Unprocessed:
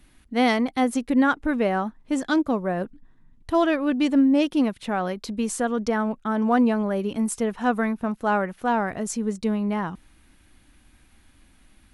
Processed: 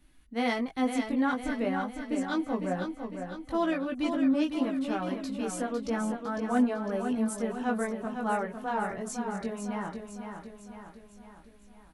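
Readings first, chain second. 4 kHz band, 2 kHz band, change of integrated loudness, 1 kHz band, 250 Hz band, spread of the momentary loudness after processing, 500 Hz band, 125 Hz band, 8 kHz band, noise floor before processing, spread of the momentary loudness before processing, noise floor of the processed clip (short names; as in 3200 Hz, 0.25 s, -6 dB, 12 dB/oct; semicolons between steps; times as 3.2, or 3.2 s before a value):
-7.0 dB, -7.0 dB, -7.0 dB, -7.0 dB, -7.0 dB, 12 LU, -7.0 dB, -7.0 dB, -7.0 dB, -58 dBFS, 8 LU, -55 dBFS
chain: chorus voices 6, 0.17 Hz, delay 19 ms, depth 3.8 ms; feedback echo 0.504 s, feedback 53%, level -7 dB; hard clip -10.5 dBFS, distortion -42 dB; gain -5 dB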